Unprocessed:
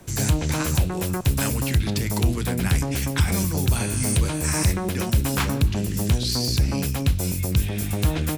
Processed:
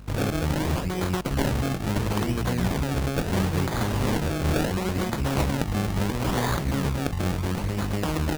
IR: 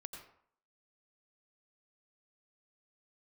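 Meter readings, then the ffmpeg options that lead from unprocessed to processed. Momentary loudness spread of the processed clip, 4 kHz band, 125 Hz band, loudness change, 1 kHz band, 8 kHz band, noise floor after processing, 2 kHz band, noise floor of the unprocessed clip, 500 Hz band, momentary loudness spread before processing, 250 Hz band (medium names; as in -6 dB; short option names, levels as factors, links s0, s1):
2 LU, -5.5 dB, -4.0 dB, -3.0 dB, +2.5 dB, -10.0 dB, -30 dBFS, -1.0 dB, -27 dBFS, +2.0 dB, 3 LU, -0.5 dB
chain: -filter_complex "[0:a]afftfilt=real='re*lt(hypot(re,im),0.891)':imag='im*lt(hypot(re,im),0.891)':win_size=1024:overlap=0.75,acrossover=split=740|1500[s0][s1][s2];[s0]aeval=exprs='sgn(val(0))*max(abs(val(0))-0.00631,0)':c=same[s3];[s3][s1][s2]amix=inputs=3:normalize=0,aeval=exprs='val(0)+0.00794*(sin(2*PI*50*n/s)+sin(2*PI*2*50*n/s)/2+sin(2*PI*3*50*n/s)/3+sin(2*PI*4*50*n/s)/4+sin(2*PI*5*50*n/s)/5)':c=same,acrusher=samples=31:mix=1:aa=0.000001:lfo=1:lforange=31:lforate=0.73"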